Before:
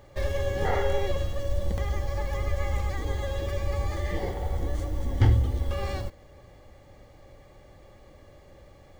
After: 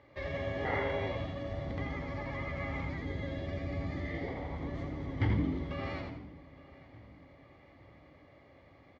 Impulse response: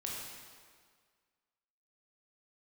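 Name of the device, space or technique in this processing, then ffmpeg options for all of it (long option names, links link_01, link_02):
frequency-shifting delay pedal into a guitar cabinet: -filter_complex "[0:a]asettb=1/sr,asplit=3[link_01][link_02][link_03];[link_01]atrim=end=2.854[link_04];[link_02]atrim=start=2.85:end=4.28,asetpts=PTS-STARTPTS,afade=type=in:duration=0.004:curve=qsin,afade=type=out:start_time=1.426:duration=0.004:curve=qsin,equalizer=frequency=100:width_type=o:width=0.67:gain=5,equalizer=frequency=1000:width_type=o:width=0.67:gain=-10,equalizer=frequency=2500:width_type=o:width=0.67:gain=-4[link_05];[link_03]atrim=start=4.276[link_06];[link_04][link_05]acrossfade=duration=0.004:curve1=hsin:curve2=qsin[link_07];[link_07][link_06]acrossfade=duration=0.004:curve1=qsin:curve2=hsin,asplit=2[link_08][link_09];[link_09]adelay=863,lowpass=frequency=3900:poles=1,volume=-20dB,asplit=2[link_10][link_11];[link_11]adelay=863,lowpass=frequency=3900:poles=1,volume=0.48,asplit=2[link_12][link_13];[link_13]adelay=863,lowpass=frequency=3900:poles=1,volume=0.48,asplit=2[link_14][link_15];[link_15]adelay=863,lowpass=frequency=3900:poles=1,volume=0.48[link_16];[link_08][link_10][link_12][link_14][link_16]amix=inputs=5:normalize=0,asplit=5[link_17][link_18][link_19][link_20][link_21];[link_18]adelay=84,afreqshift=97,volume=-6.5dB[link_22];[link_19]adelay=168,afreqshift=194,volume=-15.9dB[link_23];[link_20]adelay=252,afreqshift=291,volume=-25.2dB[link_24];[link_21]adelay=336,afreqshift=388,volume=-34.6dB[link_25];[link_17][link_22][link_23][link_24][link_25]amix=inputs=5:normalize=0,highpass=79,equalizer=frequency=190:width_type=q:width=4:gain=-7,equalizer=frequency=280:width_type=q:width=4:gain=9,equalizer=frequency=1100:width_type=q:width=4:gain=4,equalizer=frequency=2100:width_type=q:width=4:gain=10,lowpass=frequency=4600:width=0.5412,lowpass=frequency=4600:width=1.3066,volume=-8.5dB"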